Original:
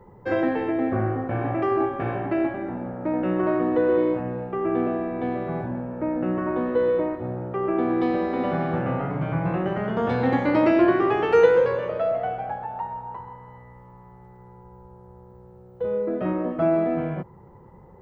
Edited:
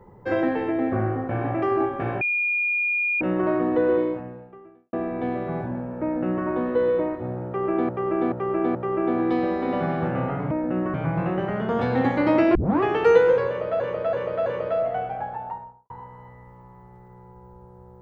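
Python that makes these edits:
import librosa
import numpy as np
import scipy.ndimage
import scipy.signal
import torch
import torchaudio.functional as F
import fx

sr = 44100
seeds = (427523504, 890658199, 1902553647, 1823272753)

y = fx.studio_fade_out(x, sr, start_s=12.66, length_s=0.53)
y = fx.edit(y, sr, fx.bleep(start_s=2.21, length_s=1.0, hz=2430.0, db=-20.5),
    fx.fade_out_span(start_s=3.92, length_s=1.01, curve='qua'),
    fx.duplicate(start_s=6.03, length_s=0.43, to_s=9.22),
    fx.repeat(start_s=7.46, length_s=0.43, count=4),
    fx.tape_start(start_s=10.83, length_s=0.26),
    fx.repeat(start_s=11.75, length_s=0.33, count=4), tone=tone)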